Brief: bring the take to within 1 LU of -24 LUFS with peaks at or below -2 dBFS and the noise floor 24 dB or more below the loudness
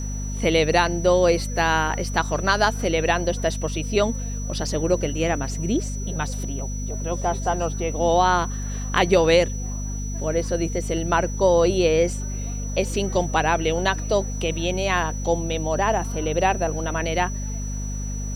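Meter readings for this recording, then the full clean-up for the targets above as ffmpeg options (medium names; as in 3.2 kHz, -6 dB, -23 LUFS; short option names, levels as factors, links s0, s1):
hum 50 Hz; highest harmonic 250 Hz; hum level -26 dBFS; steady tone 5.9 kHz; tone level -36 dBFS; loudness -23.0 LUFS; peak level -4.0 dBFS; loudness target -24.0 LUFS
-> -af "bandreject=f=50:t=h:w=6,bandreject=f=100:t=h:w=6,bandreject=f=150:t=h:w=6,bandreject=f=200:t=h:w=6,bandreject=f=250:t=h:w=6"
-af "bandreject=f=5900:w=30"
-af "volume=0.891"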